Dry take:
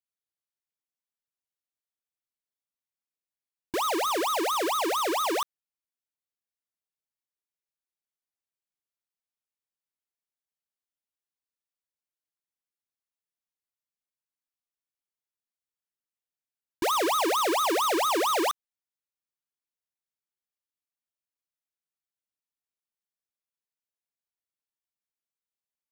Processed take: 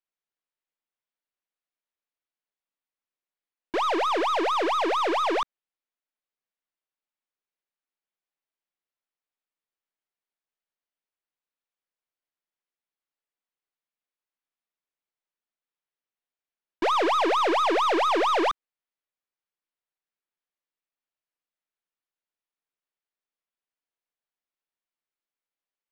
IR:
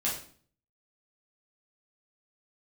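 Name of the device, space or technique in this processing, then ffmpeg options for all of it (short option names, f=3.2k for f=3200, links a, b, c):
crystal radio: -af "highpass=250,lowpass=3.2k,aeval=exprs='if(lt(val(0),0),0.708*val(0),val(0))':c=same,volume=4.5dB"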